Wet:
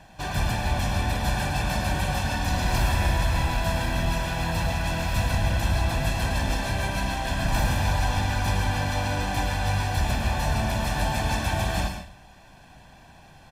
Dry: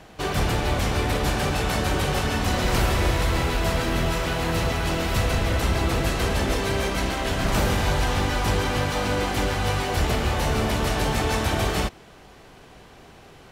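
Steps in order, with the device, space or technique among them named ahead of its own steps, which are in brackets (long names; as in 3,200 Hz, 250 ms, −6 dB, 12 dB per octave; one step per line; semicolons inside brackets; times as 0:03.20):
microphone above a desk (comb filter 1.2 ms, depth 73%; convolution reverb RT60 0.45 s, pre-delay 97 ms, DRR 6.5 dB)
level −5.5 dB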